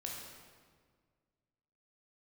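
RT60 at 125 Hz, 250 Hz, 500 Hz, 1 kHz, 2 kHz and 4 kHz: 2.2, 2.1, 1.8, 1.6, 1.4, 1.2 s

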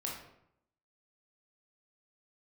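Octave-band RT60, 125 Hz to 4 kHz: 0.85, 0.85, 0.75, 0.75, 0.65, 0.50 s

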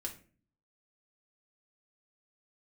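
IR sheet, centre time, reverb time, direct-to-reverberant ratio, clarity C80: 12 ms, 0.40 s, 0.0 dB, 17.0 dB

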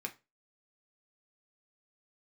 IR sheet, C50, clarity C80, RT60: 17.5 dB, 24.5 dB, 0.25 s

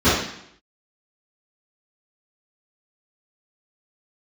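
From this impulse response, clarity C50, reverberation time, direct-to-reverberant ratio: 0.5 dB, 0.70 s, -17.5 dB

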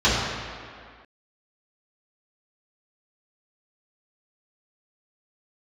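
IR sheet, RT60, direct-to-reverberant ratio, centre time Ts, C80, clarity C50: 2.1 s, -11.0 dB, 0.115 s, 1.0 dB, -1.0 dB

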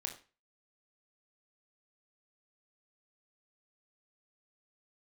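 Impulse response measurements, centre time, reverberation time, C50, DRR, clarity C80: 16 ms, 0.35 s, 10.5 dB, 2.5 dB, 15.0 dB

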